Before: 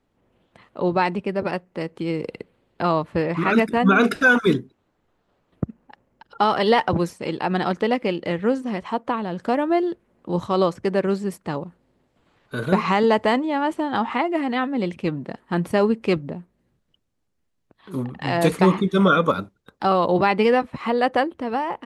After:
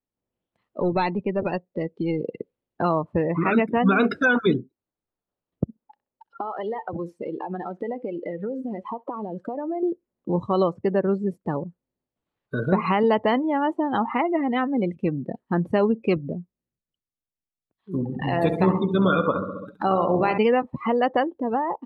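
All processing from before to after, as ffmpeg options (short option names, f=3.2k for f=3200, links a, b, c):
-filter_complex "[0:a]asettb=1/sr,asplit=3[a][b][c];[a]atrim=end=0.804[d];[b]atrim=start=0.8:end=2.27,asetpts=PTS-STARTPTS,afade=t=in:d=0.004:c=qsin,afade=t=out:st=1.466:d=0.004:c=qsin,aeval=exprs='(tanh(3.55*val(0)+0.3)-tanh(0.3))/3.55':c=same,lowpass=f=4.6k:t=q:w=1.8[e];[c]atrim=start=2.266[f];[d][e]acrossfade=d=0.004:c1=hsin:c2=qsin[g];[g][f]acrossfade=d=0.004:c1=qsin:c2=hsin,asettb=1/sr,asplit=3[h][i][j];[h]atrim=end=5.644[k];[i]atrim=start=5.64:end=9.83,asetpts=PTS-STARTPTS,afade=t=in:d=0.004:c=qsin,afade=t=out:st=4.186:d=0.004:c=qsin,bass=f=250:g=-7,treble=f=4k:g=-2,acompressor=threshold=-28dB:ratio=8:attack=3.2:release=140:knee=1:detection=peak,asplit=2[l][m];[m]adelay=64,lowpass=f=2.1k:p=1,volume=-15dB,asplit=2[n][o];[o]adelay=64,lowpass=f=2.1k:p=1,volume=0.33,asplit=2[p][q];[q]adelay=64,lowpass=f=2.1k:p=1,volume=0.33[r];[l][n][p][r]amix=inputs=4:normalize=0,atrim=end_sample=184779[s];[j]atrim=start=9.826[t];[k][s]acrossfade=d=0.004:c1=hsin:c2=qsin[u];[u][t]acrossfade=d=0.004:c1=qsin:c2=hsin,asettb=1/sr,asplit=3[v][w][x];[v]atrim=end=17.954[y];[w]atrim=start=17.95:end=20.38,asetpts=PTS-STARTPTS,afade=t=in:d=0.004:c=qsin,afade=t=out:st=2.426:d=0.004:c=qsin,aecho=1:1:68|136|204|272|340|408:0.398|0.207|0.108|0.056|0.0291|0.0151,atrim=end_sample=107163,acompressor=mode=upward:threshold=-21dB:ratio=2.5:attack=3.2:release=140:knee=2.83:detection=peak,tremolo=f=73:d=0.4[z];[x]atrim=start=20.376[aa];[y][z]acrossfade=d=0.004:c1=hsin:c2=qsin[ab];[ab][aa]acrossfade=d=0.004:c1=qsin:c2=hsin,afftdn=nr=27:nf=-29,acompressor=threshold=-33dB:ratio=1.5,equalizer=f=1.6k:w=1.5:g=-2.5,volume=5dB"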